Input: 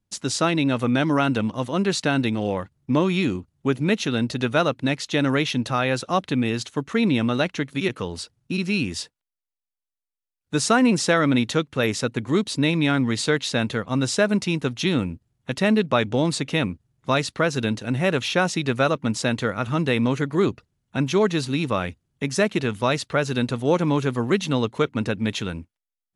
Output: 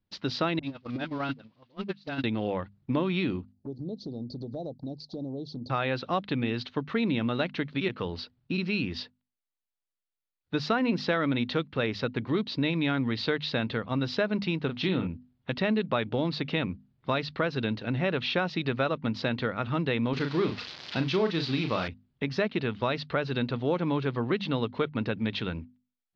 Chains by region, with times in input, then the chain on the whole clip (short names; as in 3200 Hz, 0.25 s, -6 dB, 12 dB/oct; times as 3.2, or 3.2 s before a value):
0.59–2.24 switching spikes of -20 dBFS + dispersion highs, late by 42 ms, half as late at 860 Hz + gate -19 dBFS, range -32 dB
3.52–5.7 Chebyshev band-stop 790–4400 Hz, order 4 + compressor 5:1, threshold -30 dBFS + envelope flanger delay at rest 11.5 ms, full sweep at -29 dBFS
14.65–15.07 high shelf 5900 Hz -7 dB + doubler 37 ms -8 dB
20.13–21.88 switching spikes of -15.5 dBFS + HPF 51 Hz + doubler 37 ms -7 dB
whole clip: steep low-pass 4700 Hz 48 dB/oct; notches 50/100/150/200/250 Hz; compressor 2:1, threshold -25 dBFS; gain -2 dB